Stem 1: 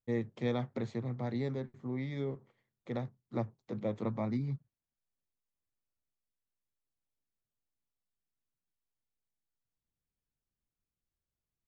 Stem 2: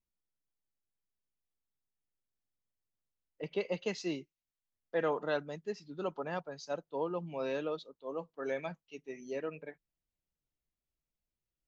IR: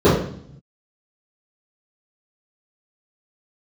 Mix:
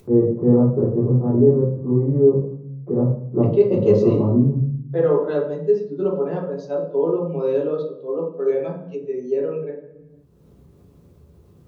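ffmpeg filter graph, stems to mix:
-filter_complex "[0:a]lowpass=f=1.2k:w=0.5412,lowpass=f=1.2k:w=1.3066,volume=-12.5dB,asplit=2[a][b];[b]volume=-3.5dB[c];[1:a]equalizer=f=510:t=o:w=2.7:g=4,volume=-5dB,asplit=2[d][e];[e]volume=-18dB[f];[2:a]atrim=start_sample=2205[g];[c][f]amix=inputs=2:normalize=0[h];[h][g]afir=irnorm=-1:irlink=0[i];[a][d][i]amix=inputs=3:normalize=0,acompressor=mode=upward:threshold=-28dB:ratio=2.5"

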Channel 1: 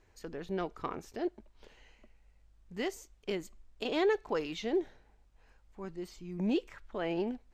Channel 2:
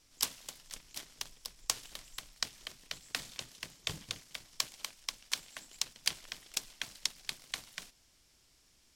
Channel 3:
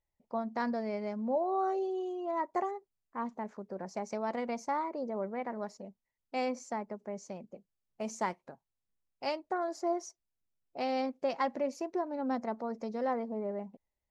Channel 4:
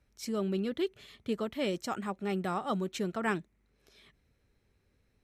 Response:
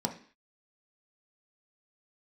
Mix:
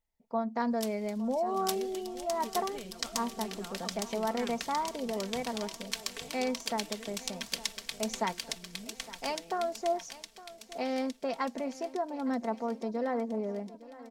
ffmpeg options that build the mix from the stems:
-filter_complex "[0:a]acompressor=threshold=-41dB:ratio=6,adelay=2350,volume=-8.5dB[a];[1:a]adelay=600,volume=-1dB,asplit=2[b][c];[c]volume=-3dB[d];[2:a]volume=0dB,asplit=3[e][f][g];[f]volume=-18dB[h];[3:a]adelay=1150,volume=-14.5dB,asplit=2[i][j];[j]volume=-14.5dB[k];[g]apad=whole_len=421432[l];[b][l]sidechaincompress=threshold=-40dB:ratio=8:attack=16:release=426[m];[d][h][k]amix=inputs=3:normalize=0,aecho=0:1:861|1722|2583|3444|4305|5166|6027|6888|7749|8610:1|0.6|0.36|0.216|0.13|0.0778|0.0467|0.028|0.0168|0.0101[n];[a][m][e][i][n]amix=inputs=5:normalize=0,aecho=1:1:4.4:0.48"

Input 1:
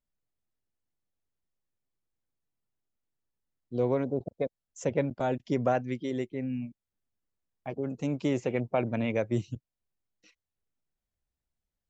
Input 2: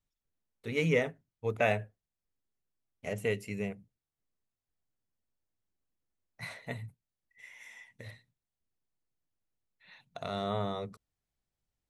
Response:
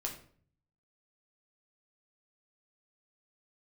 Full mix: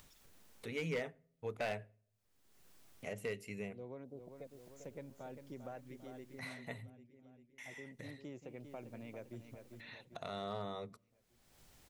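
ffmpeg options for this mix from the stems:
-filter_complex "[0:a]volume=-15dB,asplit=2[a][b];[b]volume=-9.5dB[c];[1:a]lowshelf=f=150:g=-6.5,acompressor=mode=upward:threshold=-46dB:ratio=2.5,asoftclip=type=hard:threshold=-23.5dB,volume=2dB,asplit=3[d][e][f];[d]atrim=end=6.9,asetpts=PTS-STARTPTS,afade=t=out:st=6.896:d=0.004:c=hsin[g];[e]atrim=start=6.9:end=7.58,asetpts=PTS-STARTPTS,volume=0[h];[f]atrim=start=7.58,asetpts=PTS-STARTPTS,afade=t=in:d=0.004:c=hsin[i];[g][h][i]concat=n=3:v=0:a=1,asplit=2[j][k];[k]volume=-22.5dB[l];[2:a]atrim=start_sample=2205[m];[l][m]afir=irnorm=-1:irlink=0[n];[c]aecho=0:1:397|794|1191|1588|1985|2382|2779:1|0.48|0.23|0.111|0.0531|0.0255|0.0122[o];[a][j][n][o]amix=inputs=4:normalize=0,acompressor=threshold=-56dB:ratio=1.5"

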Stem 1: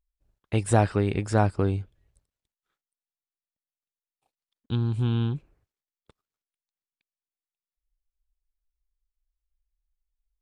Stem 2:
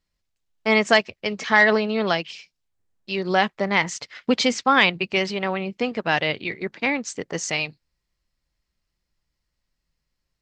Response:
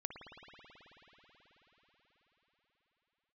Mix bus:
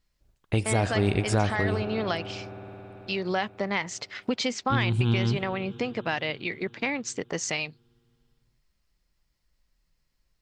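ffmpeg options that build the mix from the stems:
-filter_complex "[0:a]adynamicequalizer=threshold=0.00794:dfrequency=2200:dqfactor=0.7:tfrequency=2200:tqfactor=0.7:attack=5:release=100:ratio=0.375:range=3:mode=boostabove:tftype=highshelf,volume=2.5dB,asplit=2[a][b];[b]volume=-6.5dB[c];[1:a]acompressor=threshold=-31dB:ratio=2.5,volume=2dB,asplit=2[d][e];[e]apad=whole_len=459237[f];[a][f]sidechaincompress=threshold=-30dB:ratio=8:attack=16:release=101[g];[2:a]atrim=start_sample=2205[h];[c][h]afir=irnorm=-1:irlink=0[i];[g][d][i]amix=inputs=3:normalize=0,alimiter=limit=-13dB:level=0:latency=1:release=430"

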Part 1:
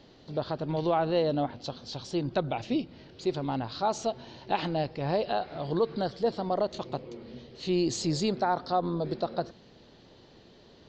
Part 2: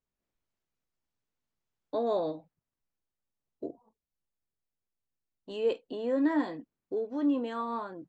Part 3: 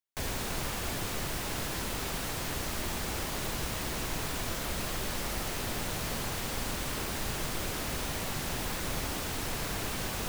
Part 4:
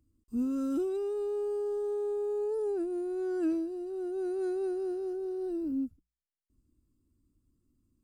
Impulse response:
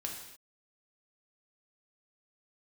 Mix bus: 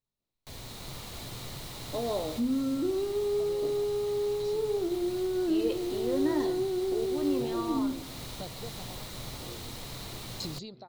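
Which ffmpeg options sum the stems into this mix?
-filter_complex "[0:a]acompressor=threshold=-35dB:ratio=4,aeval=exprs='val(0)*pow(10,-27*if(lt(mod(1*n/s,1),2*abs(1)/1000),1-mod(1*n/s,1)/(2*abs(1)/1000),(mod(1*n/s,1)-2*abs(1)/1000)/(1-2*abs(1)/1000))/20)':c=same,adelay=2400,volume=-5.5dB[a];[1:a]volume=-5dB,asplit=2[b][c];[c]volume=-8dB[d];[2:a]bandreject=f=2.6k:w=22,adelay=300,volume=-15.5dB,asplit=2[e][f];[f]volume=-3.5dB[g];[3:a]adelay=2050,volume=-1dB,asplit=2[h][i];[i]volume=-3.5dB[j];[a][e][h]amix=inputs=3:normalize=0,dynaudnorm=f=170:g=9:m=5.5dB,alimiter=level_in=4.5dB:limit=-24dB:level=0:latency=1:release=302,volume=-4.5dB,volume=0dB[k];[4:a]atrim=start_sample=2205[l];[d][g][j]amix=inputs=3:normalize=0[m];[m][l]afir=irnorm=-1:irlink=0[n];[b][k][n]amix=inputs=3:normalize=0,equalizer=f=125:t=o:w=0.33:g=10,equalizer=f=1.6k:t=o:w=0.33:g=-7,equalizer=f=4k:t=o:w=0.33:g=9"

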